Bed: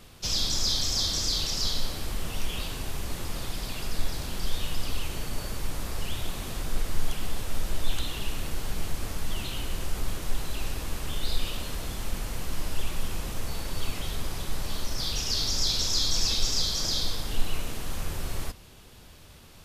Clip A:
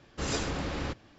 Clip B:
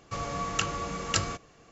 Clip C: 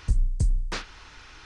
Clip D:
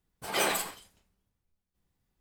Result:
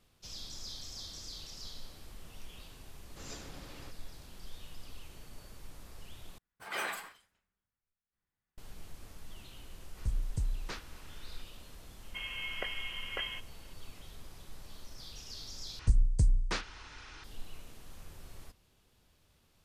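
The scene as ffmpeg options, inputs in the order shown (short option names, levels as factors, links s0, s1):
-filter_complex "[3:a]asplit=2[s0][s1];[0:a]volume=0.126[s2];[1:a]highshelf=f=4500:g=8.5[s3];[4:a]equalizer=f=1600:w=0.82:g=12[s4];[2:a]lowpass=f=2800:t=q:w=0.5098,lowpass=f=2800:t=q:w=0.6013,lowpass=f=2800:t=q:w=0.9,lowpass=f=2800:t=q:w=2.563,afreqshift=-3300[s5];[s2]asplit=3[s6][s7][s8];[s6]atrim=end=6.384[s9];[s4]atrim=end=2.2,asetpts=PTS-STARTPTS,volume=0.178[s10];[s7]atrim=start=8.576:end=15.794[s11];[s1]atrim=end=1.45,asetpts=PTS-STARTPTS,volume=0.75[s12];[s8]atrim=start=17.236[s13];[s3]atrim=end=1.18,asetpts=PTS-STARTPTS,volume=0.133,afade=t=in:d=0.004:c=hsin,afade=t=out:st=1.176:d=0.004:c=hsin,adelay=2980[s14];[s0]atrim=end=1.45,asetpts=PTS-STARTPTS,volume=0.316,afade=t=in:d=0.004:c=hsin,afade=t=out:st=1.446:d=0.004:c=hsin,adelay=9970[s15];[s5]atrim=end=1.71,asetpts=PTS-STARTPTS,volume=0.422,afade=t=in:d=0.004:c=hsin,afade=t=out:st=1.706:d=0.004:c=hsin,adelay=12030[s16];[s9][s10]acrossfade=d=0.004:c1=hsin:c2=hsin[s17];[s17][s11]acrossfade=d=0.004:c1=hsin:c2=hsin[s18];[s18][s12]acrossfade=d=0.004:c1=hsin:c2=hsin[s19];[s19][s13]acrossfade=d=0.004:c1=hsin:c2=hsin[s20];[s20][s14][s15][s16]amix=inputs=4:normalize=0"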